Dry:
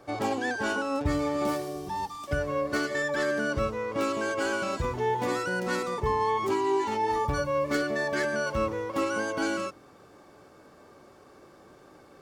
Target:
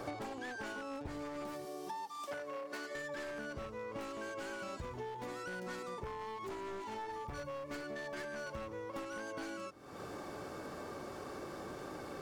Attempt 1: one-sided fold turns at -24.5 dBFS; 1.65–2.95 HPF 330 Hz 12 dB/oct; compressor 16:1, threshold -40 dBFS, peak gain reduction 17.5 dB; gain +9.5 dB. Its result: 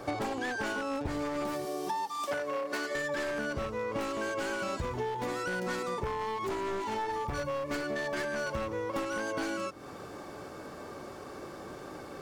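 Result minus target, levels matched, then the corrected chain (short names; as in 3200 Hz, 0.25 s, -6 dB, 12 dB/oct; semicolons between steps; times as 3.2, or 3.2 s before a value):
compressor: peak gain reduction -9.5 dB
one-sided fold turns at -24.5 dBFS; 1.65–2.95 HPF 330 Hz 12 dB/oct; compressor 16:1, threshold -50 dBFS, peak gain reduction 27 dB; gain +9.5 dB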